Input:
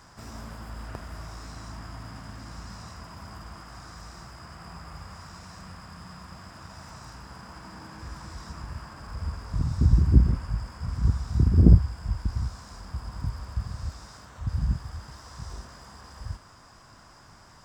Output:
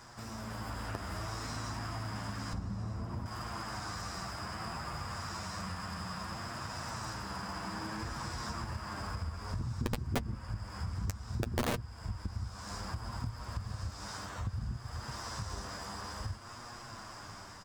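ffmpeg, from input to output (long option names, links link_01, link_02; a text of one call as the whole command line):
ffmpeg -i in.wav -filter_complex "[0:a]asettb=1/sr,asplit=3[link_01][link_02][link_03];[link_01]atrim=end=2.534[link_04];[link_02]atrim=start=2.53:end=3.26,asetpts=PTS-STARTPTS,afade=type=in:duration=0.004:curve=qsin,afade=type=out:start_time=0.726:duration=0.004:curve=qsin,tiltshelf=frequency=710:gain=10[link_05];[link_03]atrim=start=3.256[link_06];[link_04][link_05]acrossfade=duration=0.004:curve1=hsin:curve2=qsin[link_07];[link_07][link_06]acrossfade=duration=0.004:curve1=qsin:curve2=hsin,aecho=1:1:62|124|186:0.158|0.0428|0.0116,aeval=exprs='(mod(3.16*val(0)+1,2)-1)/3.16':channel_layout=same,flanger=delay=8.3:depth=2:regen=28:speed=0.6:shape=sinusoidal,acompressor=threshold=-43dB:ratio=4,lowshelf=frequency=200:gain=-3.5,dynaudnorm=framelen=140:gausssize=7:maxgain=5.5dB,volume=4dB" out.wav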